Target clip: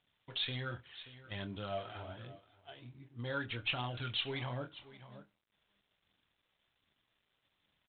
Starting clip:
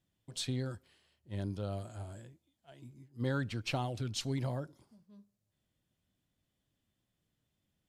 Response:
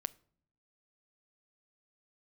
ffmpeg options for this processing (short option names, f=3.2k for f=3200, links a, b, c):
-filter_complex "[0:a]asettb=1/sr,asplit=3[a][b][c];[a]atrim=end=1.974[d];[b]atrim=start=1.97:end=3.73,asetpts=PTS-STARTPTS,afade=t=in:d=0.004:c=qsin,afade=t=out:st=1.756:d=0.004:c=qsin,equalizer=f=2k:t=o:w=2.6:g=-6[e];[c]atrim=start=3.726[f];[d][e]acrossfade=d=0.004:c1=hsin:c2=qsin[g];[g][f]acrossfade=d=0.004:c1=qsin:c2=hsin[h];[1:a]atrim=start_sample=2205,atrim=end_sample=3528[i];[h][i]afir=irnorm=-1:irlink=0,aphaser=in_gain=1:out_gain=1:delay=2.7:decay=0.46:speed=1.3:type=triangular,asplit=2[j][k];[k]adelay=25,volume=-8dB[l];[j][l]amix=inputs=2:normalize=0,aecho=1:1:580:0.0841,alimiter=level_in=9.5dB:limit=-24dB:level=0:latency=1:release=303,volume=-9.5dB,tiltshelf=f=690:g=-9,volume=6.5dB" -ar 8000 -c:a adpcm_g726 -b:a 32k